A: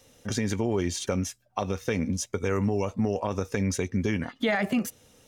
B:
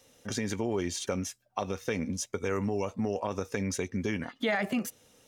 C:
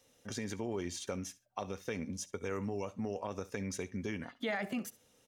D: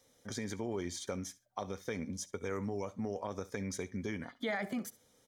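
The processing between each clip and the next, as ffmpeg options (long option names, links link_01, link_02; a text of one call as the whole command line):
ffmpeg -i in.wav -af "lowshelf=frequency=140:gain=-8,volume=-2.5dB" out.wav
ffmpeg -i in.wav -af "aecho=1:1:68|136:0.106|0.018,volume=-7dB" out.wav
ffmpeg -i in.wav -af "asuperstop=centerf=2700:order=4:qfactor=5.7" out.wav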